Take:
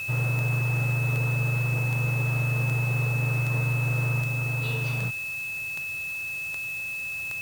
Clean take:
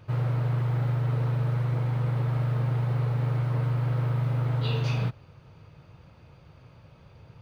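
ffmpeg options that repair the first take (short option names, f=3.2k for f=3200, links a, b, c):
-af "adeclick=t=4,bandreject=f=2.6k:w=30,afwtdn=0.005,asetnsamples=n=441:p=0,asendcmd='4.22 volume volume 3dB',volume=0dB"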